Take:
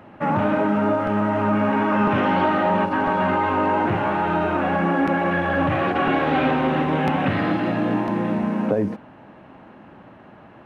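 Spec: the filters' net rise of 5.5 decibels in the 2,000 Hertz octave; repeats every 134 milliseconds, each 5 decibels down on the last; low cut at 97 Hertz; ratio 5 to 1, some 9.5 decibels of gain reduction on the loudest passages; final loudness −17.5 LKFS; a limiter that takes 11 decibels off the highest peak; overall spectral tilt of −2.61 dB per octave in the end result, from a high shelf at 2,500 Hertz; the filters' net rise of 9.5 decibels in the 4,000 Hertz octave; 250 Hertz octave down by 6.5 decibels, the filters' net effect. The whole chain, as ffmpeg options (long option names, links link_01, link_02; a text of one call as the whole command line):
ffmpeg -i in.wav -af "highpass=97,equalizer=frequency=250:width_type=o:gain=-8.5,equalizer=frequency=2000:width_type=o:gain=4,highshelf=frequency=2500:gain=3.5,equalizer=frequency=4000:width_type=o:gain=9,acompressor=threshold=-27dB:ratio=5,alimiter=limit=-24dB:level=0:latency=1,aecho=1:1:134|268|402|536|670|804|938:0.562|0.315|0.176|0.0988|0.0553|0.031|0.0173,volume=13dB" out.wav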